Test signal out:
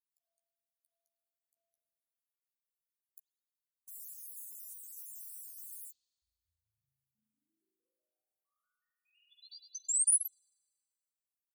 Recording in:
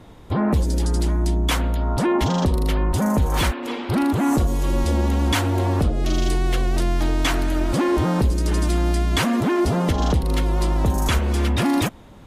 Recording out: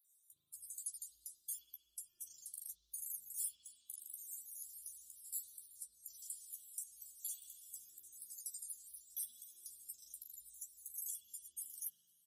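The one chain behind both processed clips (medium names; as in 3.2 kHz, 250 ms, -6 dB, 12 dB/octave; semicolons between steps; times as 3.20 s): random holes in the spectrogram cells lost 57%; compression, threshold -22 dBFS; inverse Chebyshev high-pass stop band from 2.2 kHz, stop band 70 dB; doubling 13 ms -7 dB; spring tank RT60 1.7 s, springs 37 ms, chirp 70 ms, DRR -7.5 dB; trim +1 dB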